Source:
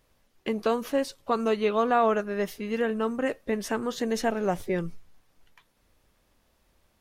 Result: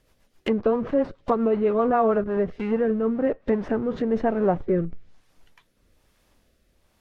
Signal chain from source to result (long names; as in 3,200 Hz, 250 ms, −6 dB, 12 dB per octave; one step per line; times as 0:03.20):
in parallel at −9 dB: comparator with hysteresis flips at −37 dBFS
on the sum: rotating-speaker cabinet horn 7.5 Hz, later 1.1 Hz, at 0:01.83
treble cut that deepens with the level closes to 1,200 Hz, closed at −26.5 dBFS
level +5 dB